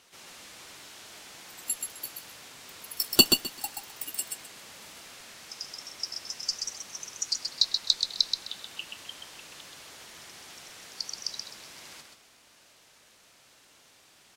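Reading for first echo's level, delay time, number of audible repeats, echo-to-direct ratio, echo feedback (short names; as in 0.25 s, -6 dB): -5.0 dB, 0.129 s, 3, -5.0 dB, 21%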